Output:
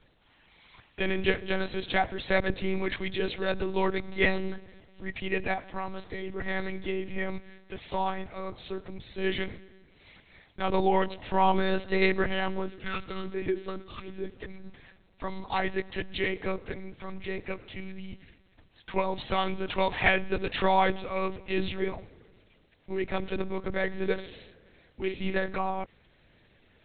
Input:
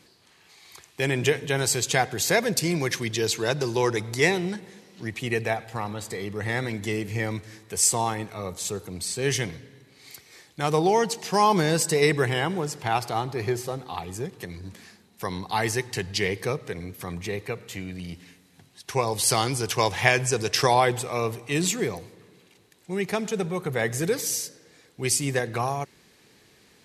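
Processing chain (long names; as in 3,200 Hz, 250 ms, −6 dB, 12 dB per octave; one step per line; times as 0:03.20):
0:12.67–0:14.37: gain on a spectral selection 540–1,100 Hz −28 dB
0:24.13–0:25.47: double-tracking delay 49 ms −8 dB
one-pitch LPC vocoder at 8 kHz 190 Hz
level −3 dB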